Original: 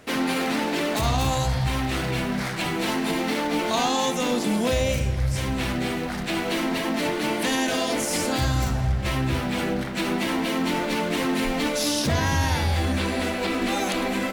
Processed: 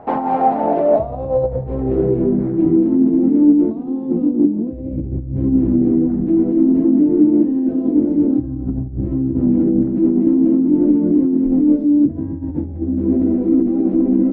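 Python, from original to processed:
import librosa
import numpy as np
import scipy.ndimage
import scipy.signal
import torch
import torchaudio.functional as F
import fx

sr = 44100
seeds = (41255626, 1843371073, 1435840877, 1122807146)

y = fx.over_compress(x, sr, threshold_db=-26.0, ratio=-0.5)
y = fx.filter_sweep_lowpass(y, sr, from_hz=820.0, to_hz=300.0, start_s=0.32, end_s=2.78, q=7.1)
y = y * librosa.db_to_amplitude(4.0)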